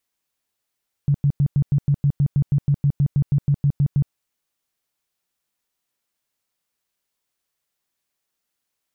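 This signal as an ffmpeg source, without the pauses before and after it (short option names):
-f lavfi -i "aevalsrc='0.211*sin(2*PI*142*mod(t,0.16))*lt(mod(t,0.16),9/142)':d=3.04:s=44100"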